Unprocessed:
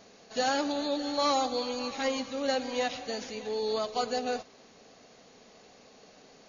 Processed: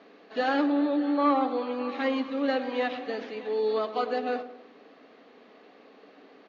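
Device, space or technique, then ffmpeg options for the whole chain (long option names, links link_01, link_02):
guitar cabinet: -filter_complex "[0:a]asettb=1/sr,asplit=3[link_01][link_02][link_03];[link_01]atrim=end=0.664[link_04];[link_02]atrim=start=0.66:end=1.89,asetpts=PTS-STARTPTS,afade=type=in:duration=0.004:curve=qsin,afade=type=out:start_time=1.226:duration=0.004:curve=qsin,acrossover=split=2900[link_05][link_06];[link_06]acompressor=threshold=-51dB:ratio=4:attack=1:release=60[link_07];[link_05][link_07]amix=inputs=2:normalize=0[link_08];[link_03]atrim=start=1.886[link_09];[link_04][link_08]acrossfade=duration=0.004:curve1=hsin:curve2=qsin[link_10];[link_10][link_09]acrossfade=duration=0.004:curve1=qsin:curve2=hsin,highpass=180,highpass=97,equalizer=frequency=150:width_type=q:width=4:gain=-9,equalizer=frequency=290:width_type=q:width=4:gain=9,equalizer=frequency=1200:width_type=q:width=4:gain=5,equalizer=frequency=1800:width_type=q:width=4:gain=4,lowpass=frequency=3500:width=0.5412,lowpass=frequency=3500:width=1.3066,equalizer=frequency=420:width=2.8:gain=3.5,asplit=2[link_11][link_12];[link_12]adelay=101,lowpass=frequency=1100:poles=1,volume=-11dB,asplit=2[link_13][link_14];[link_14]adelay=101,lowpass=frequency=1100:poles=1,volume=0.5,asplit=2[link_15][link_16];[link_16]adelay=101,lowpass=frequency=1100:poles=1,volume=0.5,asplit=2[link_17][link_18];[link_18]adelay=101,lowpass=frequency=1100:poles=1,volume=0.5,asplit=2[link_19][link_20];[link_20]adelay=101,lowpass=frequency=1100:poles=1,volume=0.5[link_21];[link_11][link_13][link_15][link_17][link_19][link_21]amix=inputs=6:normalize=0"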